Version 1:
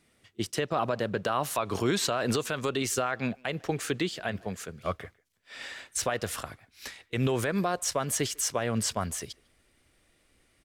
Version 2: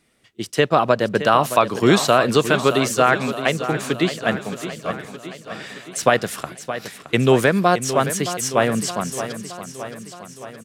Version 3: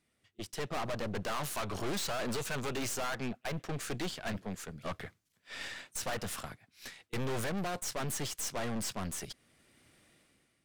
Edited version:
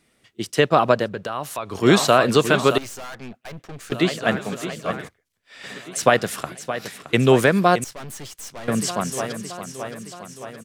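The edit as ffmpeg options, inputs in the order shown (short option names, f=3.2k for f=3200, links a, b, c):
-filter_complex "[0:a]asplit=2[a][b];[2:a]asplit=2[c][d];[1:a]asplit=5[e][f][g][h][i];[e]atrim=end=1.09[j];[a]atrim=start=0.99:end=1.88[k];[f]atrim=start=1.78:end=2.782[l];[c]atrim=start=2.778:end=3.922[m];[g]atrim=start=3.918:end=5.09[n];[b]atrim=start=5.07:end=5.65[o];[h]atrim=start=5.63:end=7.842[p];[d]atrim=start=7.838:end=8.682[q];[i]atrim=start=8.678[r];[j][k]acrossfade=d=0.1:c1=tri:c2=tri[s];[s][l]acrossfade=d=0.1:c1=tri:c2=tri[t];[t][m]acrossfade=d=0.004:c1=hsin:c2=hsin[u];[u][n]acrossfade=d=0.004:c1=hsin:c2=hsin[v];[v][o]acrossfade=d=0.02:c1=tri:c2=tri[w];[w][p]acrossfade=d=0.02:c1=tri:c2=tri[x];[x][q]acrossfade=d=0.004:c1=hsin:c2=hsin[y];[y][r]acrossfade=d=0.004:c1=hsin:c2=hsin"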